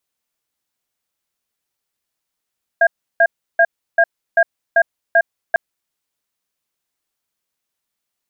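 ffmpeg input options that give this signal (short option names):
-f lavfi -i "aevalsrc='0.282*(sin(2*PI*674*t)+sin(2*PI*1620*t))*clip(min(mod(t,0.39),0.06-mod(t,0.39))/0.005,0,1)':d=2.75:s=44100"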